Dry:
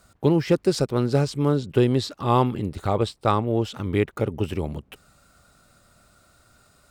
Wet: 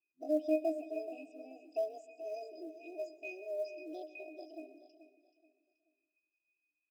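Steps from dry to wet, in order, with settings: per-bin expansion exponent 1.5; Chebyshev band-stop 390–1400 Hz, order 5; FFT band-pass 150–4900 Hz; low shelf 260 Hz -6 dB; in parallel at -2 dB: compressor 6:1, threshold -35 dBFS, peak gain reduction 15.5 dB; on the sum: octave resonator F, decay 0.17 s; short-mantissa float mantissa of 4-bit; pitch shift +10 st; feedback echo 0.43 s, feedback 31%, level -13 dB; on a send at -14.5 dB: reverb RT60 0.90 s, pre-delay 0.115 s; on the sum: gain -2.5 dB

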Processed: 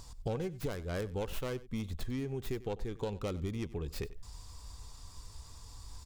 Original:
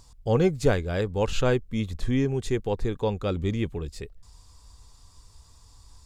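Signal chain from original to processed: tracing distortion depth 0.31 ms; compressor 12:1, threshold -36 dBFS, peak gain reduction 21 dB; echo 94 ms -18.5 dB; gain +3 dB

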